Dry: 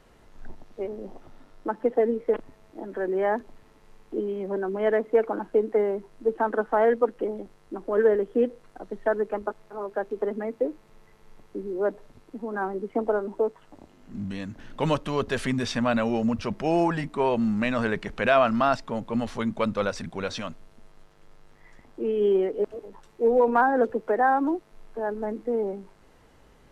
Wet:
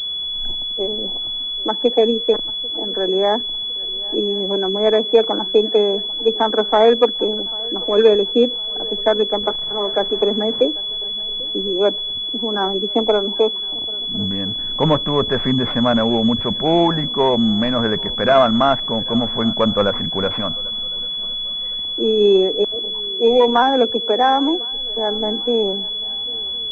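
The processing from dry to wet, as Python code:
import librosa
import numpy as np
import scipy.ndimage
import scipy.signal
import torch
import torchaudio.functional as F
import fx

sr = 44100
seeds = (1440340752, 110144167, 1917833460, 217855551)

p1 = fx.zero_step(x, sr, step_db=-41.5, at=(9.43, 10.65))
p2 = fx.rider(p1, sr, range_db=10, speed_s=2.0)
p3 = p1 + (p2 * librosa.db_to_amplitude(-2.5))
p4 = fx.echo_swing(p3, sr, ms=1056, ratio=3, feedback_pct=33, wet_db=-23)
p5 = fx.pwm(p4, sr, carrier_hz=3400.0)
y = p5 * librosa.db_to_amplitude(3.0)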